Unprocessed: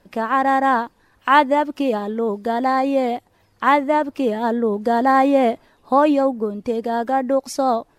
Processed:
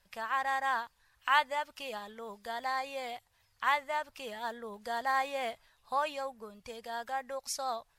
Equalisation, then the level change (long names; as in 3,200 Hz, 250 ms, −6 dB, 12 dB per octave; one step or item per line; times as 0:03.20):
guitar amp tone stack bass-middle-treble 10-0-10
−4.0 dB